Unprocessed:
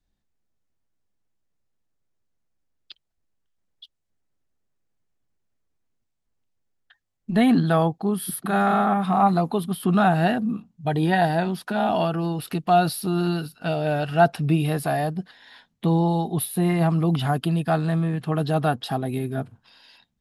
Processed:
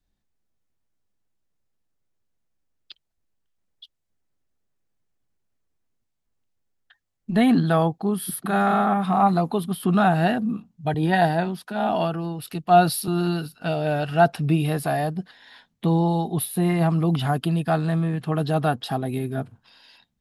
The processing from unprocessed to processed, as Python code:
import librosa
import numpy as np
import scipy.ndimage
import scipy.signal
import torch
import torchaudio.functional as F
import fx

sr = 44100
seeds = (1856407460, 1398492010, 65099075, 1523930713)

y = fx.band_widen(x, sr, depth_pct=70, at=(10.94, 13.08))